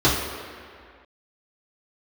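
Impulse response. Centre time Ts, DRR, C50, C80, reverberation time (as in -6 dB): 79 ms, -9.0 dB, 2.0 dB, 4.0 dB, 2.1 s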